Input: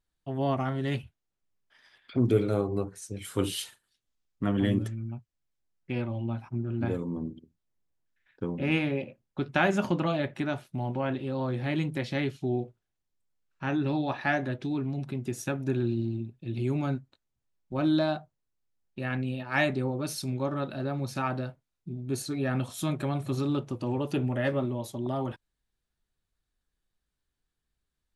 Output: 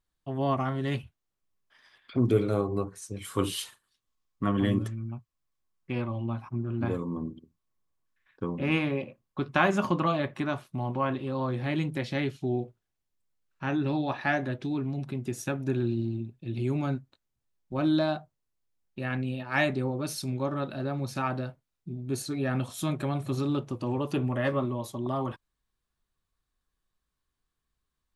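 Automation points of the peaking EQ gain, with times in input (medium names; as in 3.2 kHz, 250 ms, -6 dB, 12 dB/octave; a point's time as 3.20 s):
peaking EQ 1.1 kHz 0.2 oct
2.73 s +6.5 dB
3.19 s +13.5 dB
11.27 s +13.5 dB
11.81 s +2 dB
23.63 s +2 dB
24.26 s +12 dB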